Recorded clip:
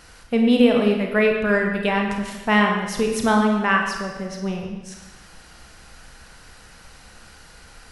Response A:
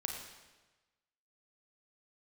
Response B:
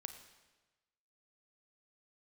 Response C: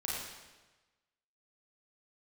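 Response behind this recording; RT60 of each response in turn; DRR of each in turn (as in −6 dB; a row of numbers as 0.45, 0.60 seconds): A; 1.2, 1.2, 1.2 seconds; 1.5, 7.5, −6.0 decibels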